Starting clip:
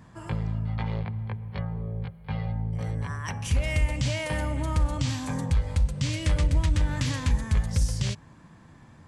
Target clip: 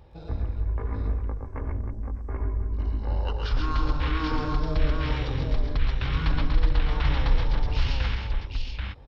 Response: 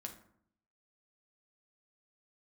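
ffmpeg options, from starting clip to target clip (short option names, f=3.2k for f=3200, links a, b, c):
-filter_complex "[0:a]asetrate=22050,aresample=44100,atempo=2,asplit=2[a][b];[b]aecho=0:1:114|133|316|785:0.376|0.596|0.355|0.668[c];[a][c]amix=inputs=2:normalize=0"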